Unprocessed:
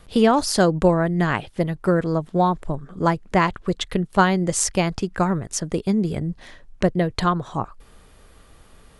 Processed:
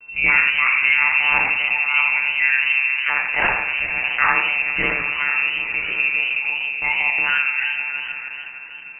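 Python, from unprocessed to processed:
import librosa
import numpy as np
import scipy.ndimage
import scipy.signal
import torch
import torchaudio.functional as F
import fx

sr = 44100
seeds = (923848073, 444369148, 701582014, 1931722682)

p1 = fx.tilt_shelf(x, sr, db=-7.5, hz=1400.0)
p2 = fx.small_body(p1, sr, hz=(300.0, 1800.0), ring_ms=45, db=6)
p3 = p2 + fx.echo_opening(p2, sr, ms=154, hz=200, octaves=1, feedback_pct=70, wet_db=-3, dry=0)
p4 = fx.room_shoebox(p3, sr, seeds[0], volume_m3=150.0, walls='mixed', distance_m=5.6)
p5 = fx.lpc_monotone(p4, sr, seeds[1], pitch_hz=140.0, order=16)
p6 = fx.freq_invert(p5, sr, carrier_hz=2700)
p7 = fx.echo_warbled(p6, sr, ms=82, feedback_pct=36, rate_hz=2.8, cents=150, wet_db=-10.5)
y = p7 * librosa.db_to_amplitude(-14.0)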